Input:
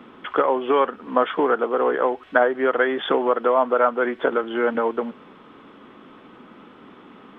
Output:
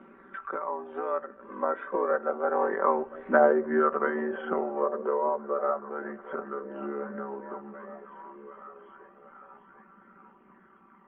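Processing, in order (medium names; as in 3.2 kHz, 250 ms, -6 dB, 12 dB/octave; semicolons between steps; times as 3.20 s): Doppler pass-by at 2.14 s, 24 m/s, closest 11 m; low-pass 1.7 kHz 24 dB/octave; hum notches 50/100/150 Hz; in parallel at 0 dB: compression, threshold -45 dBFS, peak gain reduction 28.5 dB; on the sum: granular stretch 1.5×, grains 31 ms; flange 0.29 Hz, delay 0.3 ms, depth 1.8 ms, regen +42%; repeats whose band climbs or falls 744 ms, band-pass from 270 Hz, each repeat 0.7 oct, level -11.5 dB; on a send at -24 dB: reverberation RT60 0.75 s, pre-delay 46 ms; on the sum: tape noise reduction on one side only encoder only; trim +3 dB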